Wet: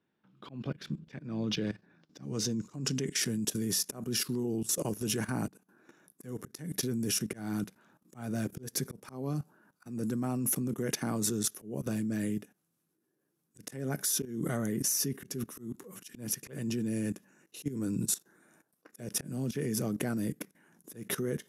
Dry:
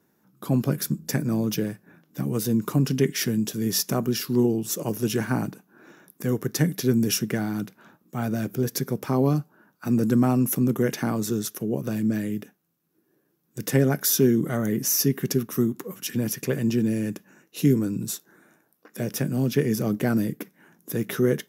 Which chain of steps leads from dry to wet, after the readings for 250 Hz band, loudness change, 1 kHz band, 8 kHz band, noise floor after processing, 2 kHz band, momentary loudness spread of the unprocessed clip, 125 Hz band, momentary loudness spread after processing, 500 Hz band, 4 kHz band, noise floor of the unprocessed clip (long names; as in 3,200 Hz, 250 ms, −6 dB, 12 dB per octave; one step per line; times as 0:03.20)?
−10.5 dB, −9.0 dB, −10.5 dB, −3.0 dB, −80 dBFS, −8.5 dB, 11 LU, −11.5 dB, 13 LU, −12.0 dB, −4.5 dB, −69 dBFS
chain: output level in coarse steps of 16 dB
volume swells 210 ms
low-pass filter sweep 3,200 Hz → 10,000 Hz, 0:01.26–0:03.43